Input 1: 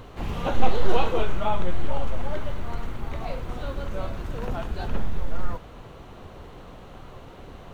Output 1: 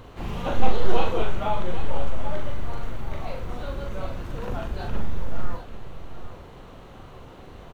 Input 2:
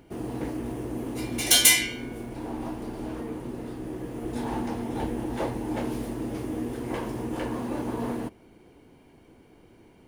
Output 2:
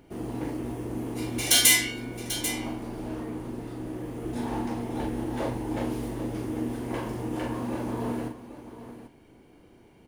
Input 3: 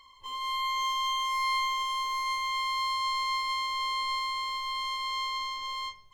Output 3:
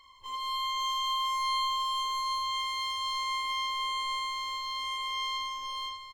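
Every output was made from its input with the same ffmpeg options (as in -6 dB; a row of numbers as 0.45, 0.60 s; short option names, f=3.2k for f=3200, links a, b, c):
-af "aecho=1:1:41|791:0.562|0.266,volume=-2dB"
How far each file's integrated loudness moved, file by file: -0.5, -0.5, -1.0 LU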